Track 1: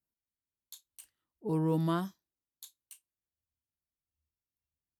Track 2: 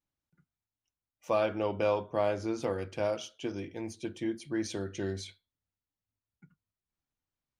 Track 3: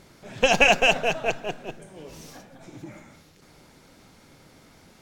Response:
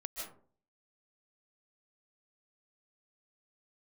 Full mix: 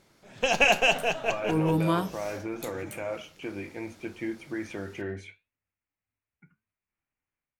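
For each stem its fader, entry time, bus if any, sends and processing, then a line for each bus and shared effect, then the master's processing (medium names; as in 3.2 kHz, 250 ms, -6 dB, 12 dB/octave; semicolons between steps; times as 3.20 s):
+3.0 dB, 0.00 s, no send, none
-1.5 dB, 0.00 s, no send, resonant high shelf 3.1 kHz -10 dB, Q 3; peak limiter -25 dBFS, peak gain reduction 9 dB
-4.5 dB, 0.00 s, no send, none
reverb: none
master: bass shelf 260 Hz -4 dB; level rider gain up to 8 dB; flange 0.72 Hz, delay 8.4 ms, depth 6.1 ms, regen -76%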